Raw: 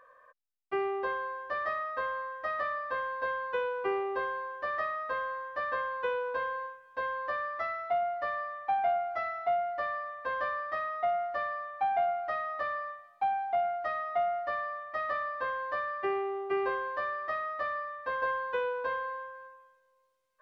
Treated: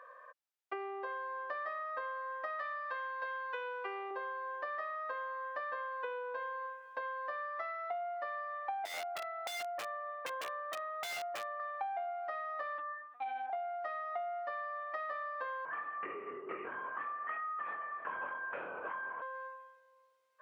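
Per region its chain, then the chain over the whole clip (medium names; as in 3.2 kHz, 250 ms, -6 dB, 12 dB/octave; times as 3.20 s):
2.59–4.11 s: high-pass 45 Hz + tilt shelf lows -5.5 dB, about 1.1 kHz
8.85–11.60 s: steep low-pass 4 kHz + peaking EQ 2.5 kHz -7.5 dB 2.4 oct + integer overflow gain 30 dB
12.78–13.50 s: high-pass 360 Hz 24 dB/octave + overload inside the chain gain 32 dB + LPC vocoder at 8 kHz pitch kept
15.65–19.22 s: static phaser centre 1.7 kHz, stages 4 + LPC vocoder at 8 kHz whisper + doubling 24 ms -5 dB
whole clip: compression 6:1, threshold -42 dBFS; high-pass 440 Hz 12 dB/octave; treble shelf 4.2 kHz -8 dB; trim +5 dB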